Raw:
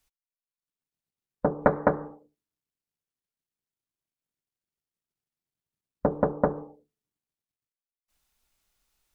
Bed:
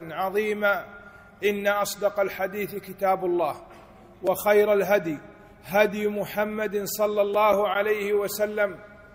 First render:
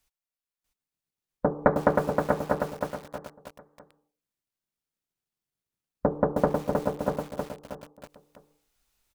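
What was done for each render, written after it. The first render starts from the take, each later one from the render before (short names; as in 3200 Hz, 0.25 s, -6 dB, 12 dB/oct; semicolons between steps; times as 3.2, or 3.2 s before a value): feedback echo 0.643 s, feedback 22%, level -4.5 dB; lo-fi delay 0.314 s, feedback 35%, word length 7-bit, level -4 dB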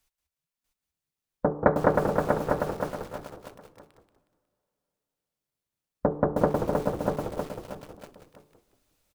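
frequency-shifting echo 0.182 s, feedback 35%, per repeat -90 Hz, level -8.5 dB; two-slope reverb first 0.38 s, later 3.4 s, from -19 dB, DRR 17 dB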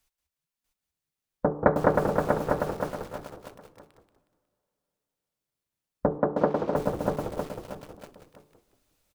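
6.18–6.76 three-band isolator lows -16 dB, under 150 Hz, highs -21 dB, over 5500 Hz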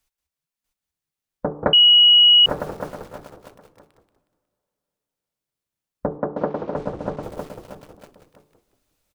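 1.73–2.46 bleep 2910 Hz -8.5 dBFS; 6.17–7.23 air absorption 100 m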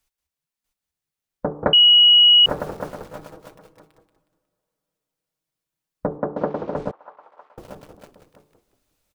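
3.09–6.07 comb 6.3 ms, depth 55%; 6.91–7.58 ladder band-pass 1200 Hz, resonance 40%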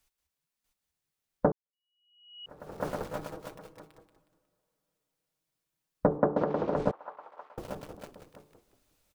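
1.52–2.88 fade in exponential; 6.42–6.82 compressor, threshold -23 dBFS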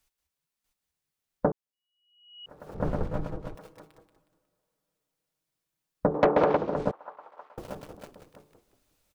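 2.74–3.55 RIAA curve playback; 6.14–6.57 overdrive pedal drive 20 dB, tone 3100 Hz, clips at -10 dBFS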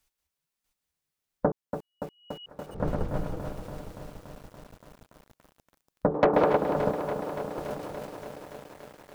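lo-fi delay 0.286 s, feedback 80%, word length 8-bit, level -9 dB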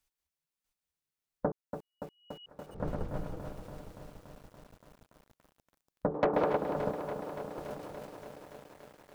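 gain -6.5 dB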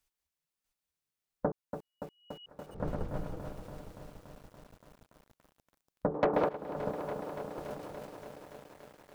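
6.49–7 fade in, from -16 dB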